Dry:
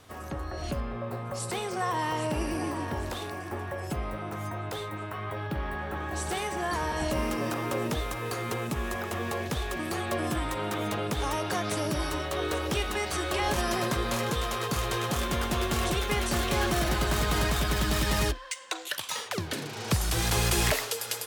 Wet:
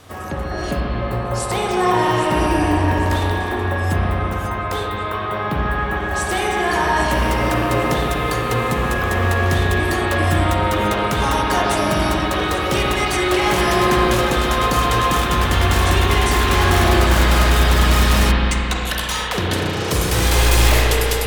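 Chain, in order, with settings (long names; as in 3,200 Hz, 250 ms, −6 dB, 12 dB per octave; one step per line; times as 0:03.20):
wave folding −22.5 dBFS
spring reverb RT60 3.2 s, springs 33/44 ms, chirp 30 ms, DRR −3 dB
level +8.5 dB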